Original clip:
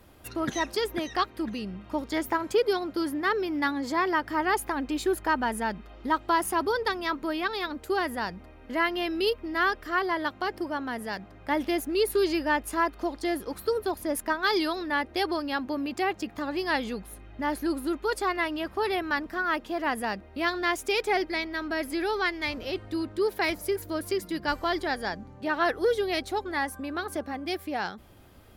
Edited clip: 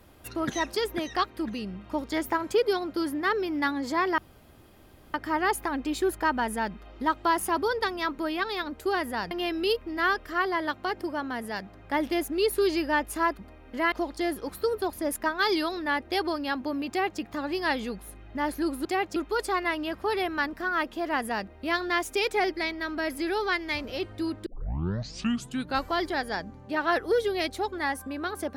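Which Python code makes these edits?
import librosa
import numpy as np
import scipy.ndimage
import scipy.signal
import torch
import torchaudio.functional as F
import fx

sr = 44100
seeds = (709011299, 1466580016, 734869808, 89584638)

y = fx.edit(x, sr, fx.insert_room_tone(at_s=4.18, length_s=0.96),
    fx.move(start_s=8.35, length_s=0.53, to_s=12.96),
    fx.duplicate(start_s=15.93, length_s=0.31, to_s=17.89),
    fx.tape_start(start_s=23.19, length_s=1.41), tone=tone)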